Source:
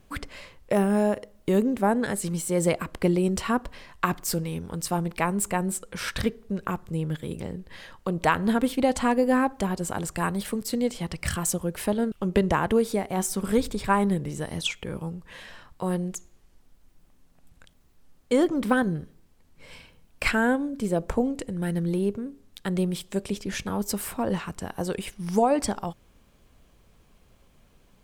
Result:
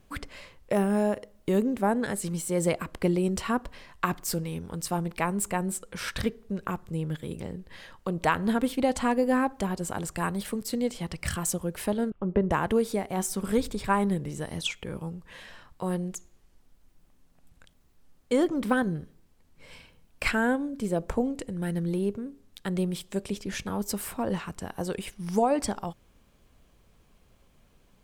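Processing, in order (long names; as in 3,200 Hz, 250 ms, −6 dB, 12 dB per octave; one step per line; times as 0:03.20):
0:12.10–0:12.51: low-pass filter 1,300 Hz 12 dB per octave
level −2.5 dB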